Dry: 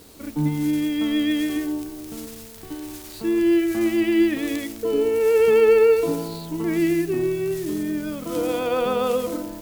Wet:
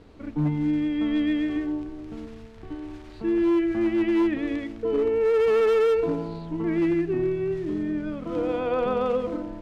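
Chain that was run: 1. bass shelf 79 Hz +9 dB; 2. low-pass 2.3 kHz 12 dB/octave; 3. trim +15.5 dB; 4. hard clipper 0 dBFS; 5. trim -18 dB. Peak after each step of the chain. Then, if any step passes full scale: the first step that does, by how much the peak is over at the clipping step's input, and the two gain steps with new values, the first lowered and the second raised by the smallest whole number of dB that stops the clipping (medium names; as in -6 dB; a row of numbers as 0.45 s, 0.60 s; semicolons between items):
-8.0 dBFS, -8.0 dBFS, +7.5 dBFS, 0.0 dBFS, -18.0 dBFS; step 3, 7.5 dB; step 3 +7.5 dB, step 5 -10 dB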